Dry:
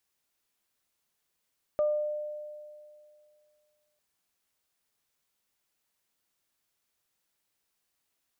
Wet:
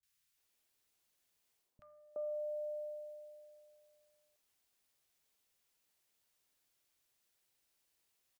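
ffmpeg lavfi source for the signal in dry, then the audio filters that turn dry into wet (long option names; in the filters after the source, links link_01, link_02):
-f lavfi -i "aevalsrc='0.0794*pow(10,-3*t/2.34)*sin(2*PI*600*t)+0.0119*pow(10,-3*t/0.45)*sin(2*PI*1200*t)':duration=2.2:sample_rate=44100"
-filter_complex "[0:a]bandreject=frequency=82.39:width_type=h:width=4,bandreject=frequency=164.78:width_type=h:width=4,bandreject=frequency=247.17:width_type=h:width=4,bandreject=frequency=329.56:width_type=h:width=4,bandreject=frequency=411.95:width_type=h:width=4,bandreject=frequency=494.34:width_type=h:width=4,bandreject=frequency=576.73:width_type=h:width=4,bandreject=frequency=659.12:width_type=h:width=4,bandreject=frequency=741.51:width_type=h:width=4,bandreject=frequency=823.9:width_type=h:width=4,bandreject=frequency=906.29:width_type=h:width=4,bandreject=frequency=988.68:width_type=h:width=4,bandreject=frequency=1071.07:width_type=h:width=4,bandreject=frequency=1153.46:width_type=h:width=4,bandreject=frequency=1235.85:width_type=h:width=4,bandreject=frequency=1318.24:width_type=h:width=4,bandreject=frequency=1400.63:width_type=h:width=4,bandreject=frequency=1483.02:width_type=h:width=4,bandreject=frequency=1565.41:width_type=h:width=4,bandreject=frequency=1647.8:width_type=h:width=4,bandreject=frequency=1730.19:width_type=h:width=4,bandreject=frequency=1812.58:width_type=h:width=4,bandreject=frequency=1894.97:width_type=h:width=4,bandreject=frequency=1977.36:width_type=h:width=4,bandreject=frequency=2059.75:width_type=h:width=4,bandreject=frequency=2142.14:width_type=h:width=4,bandreject=frequency=2224.53:width_type=h:width=4,bandreject=frequency=2306.92:width_type=h:width=4,areverse,acompressor=threshold=-39dB:ratio=8,areverse,acrossover=split=200|1200[link_01][link_02][link_03];[link_03]adelay=30[link_04];[link_02]adelay=370[link_05];[link_01][link_05][link_04]amix=inputs=3:normalize=0"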